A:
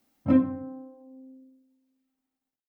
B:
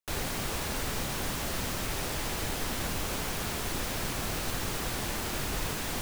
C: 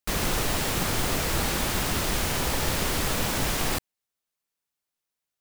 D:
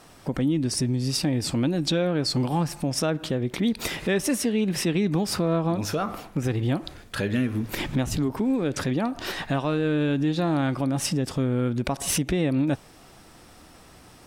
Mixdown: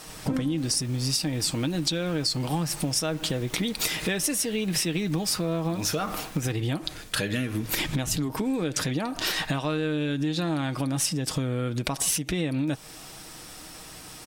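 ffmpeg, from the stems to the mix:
-filter_complex "[0:a]volume=-1dB[a];[1:a]aeval=exprs='clip(val(0),-1,0.0224)':c=same,adelay=500,volume=-10.5dB[b];[2:a]lowpass=9.8k,volume=-19.5dB[c];[3:a]highshelf=f=2.4k:g=10.5,volume=2dB[d];[a][b][c][d]amix=inputs=4:normalize=0,aecho=1:1:6.4:0.36,acompressor=threshold=-24dB:ratio=6"

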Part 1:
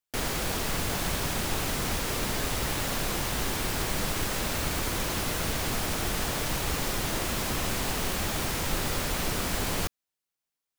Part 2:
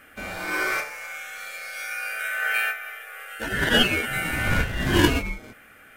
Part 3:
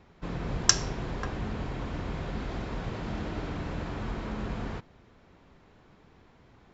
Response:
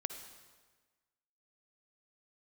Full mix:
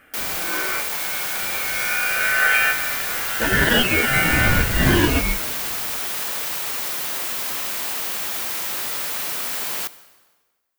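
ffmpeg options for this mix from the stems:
-filter_complex "[0:a]highpass=f=1.3k:p=1,highshelf=f=11k:g=10.5,volume=1dB,asplit=2[a][b];[b]volume=-5dB[c];[1:a]alimiter=limit=-15.5dB:level=0:latency=1:release=235,dynaudnorm=f=860:g=3:m=11dB,volume=-1.5dB[d];[2:a]acompressor=threshold=-36dB:ratio=6,adelay=1200,volume=-7.5dB[e];[3:a]atrim=start_sample=2205[f];[c][f]afir=irnorm=-1:irlink=0[g];[a][d][e][g]amix=inputs=4:normalize=0,equalizer=f=9.3k:t=o:w=2.3:g=-3.5"

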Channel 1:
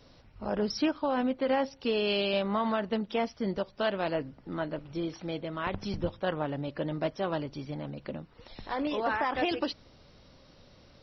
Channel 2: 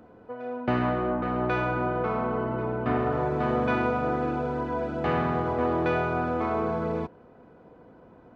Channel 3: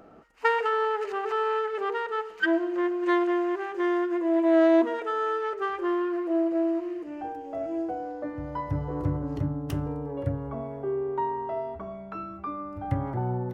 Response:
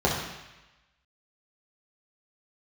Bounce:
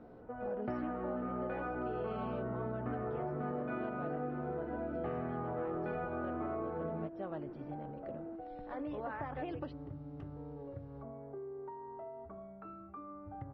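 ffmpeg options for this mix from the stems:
-filter_complex "[0:a]volume=-8.5dB[a];[1:a]flanger=delay=16.5:depth=4.7:speed=0.39,volume=0.5dB[b];[2:a]acompressor=threshold=-32dB:ratio=6,adelay=500,volume=-10.5dB[c];[a][b][c]amix=inputs=3:normalize=0,lowpass=1.5k,bandreject=f=1k:w=12,acompressor=threshold=-36dB:ratio=5"

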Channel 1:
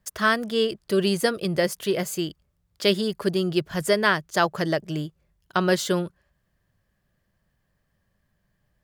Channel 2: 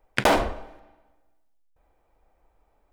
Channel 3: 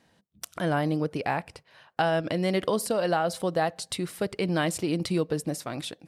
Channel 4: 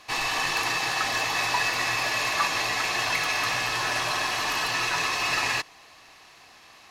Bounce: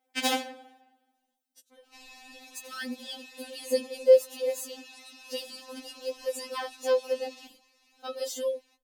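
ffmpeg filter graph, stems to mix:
-filter_complex "[0:a]equalizer=f=500:t=o:w=1:g=7,equalizer=f=2k:t=o:w=1:g=-5,equalizer=f=4k:t=o:w=1:g=-4,adelay=2500,volume=-2.5dB[a];[1:a]highpass=320,equalizer=f=540:t=o:w=0.84:g=-8.5,acontrast=35,volume=-1.5dB[b];[2:a]acompressor=threshold=-31dB:ratio=6,adelay=1150,volume=-14dB[c];[3:a]alimiter=level_in=3.5dB:limit=-24dB:level=0:latency=1:release=37,volume=-3.5dB,adelay=1850,volume=-9.5dB[d];[a][b][c][d]amix=inputs=4:normalize=0,equalizer=f=1.3k:w=1.2:g=-14,afftfilt=real='re*3.46*eq(mod(b,12),0)':imag='im*3.46*eq(mod(b,12),0)':win_size=2048:overlap=0.75"

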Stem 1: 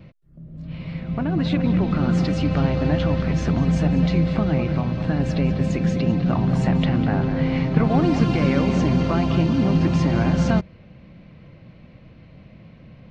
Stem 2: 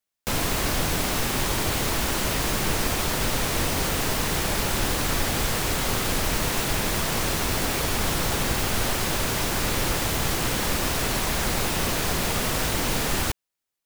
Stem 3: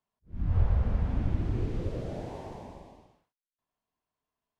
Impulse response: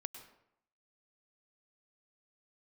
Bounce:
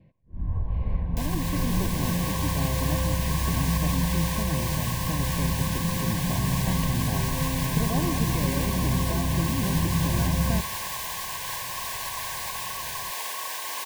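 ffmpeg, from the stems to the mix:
-filter_complex "[0:a]lowpass=f=1.8k:p=1,volume=-15.5dB,asplit=2[a][b];[b]volume=-4.5dB[c];[1:a]highpass=750,highshelf=f=11k:g=5,adelay=900,volume=-8dB[d];[2:a]lowpass=f=1.1k:p=1,volume=-2.5dB[e];[d][e]amix=inputs=2:normalize=0,equalizer=f=1.1k:t=o:w=0.32:g=12.5,alimiter=level_in=2dB:limit=-24dB:level=0:latency=1:release=476,volume=-2dB,volume=0dB[f];[3:a]atrim=start_sample=2205[g];[c][g]afir=irnorm=-1:irlink=0[h];[a][f][h]amix=inputs=3:normalize=0,asuperstop=centerf=1300:order=20:qfactor=3.5,asubboost=boost=3.5:cutoff=110,dynaudnorm=f=160:g=5:m=5dB"

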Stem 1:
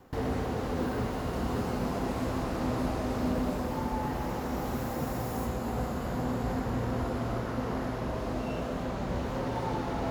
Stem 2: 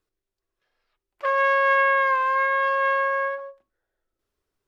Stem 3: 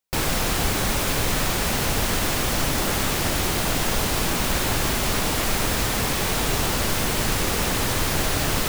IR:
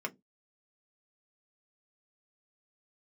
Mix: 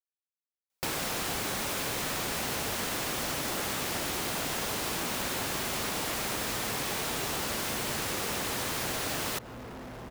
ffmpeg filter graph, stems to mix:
-filter_complex "[0:a]asoftclip=type=hard:threshold=-36.5dB,acrusher=bits=2:mode=log:mix=0:aa=0.000001,adelay=2000,volume=-2.5dB[a];[2:a]highpass=f=230:p=1,adelay=700,volume=-2.5dB[b];[a][b]amix=inputs=2:normalize=0,acompressor=threshold=-31dB:ratio=3"

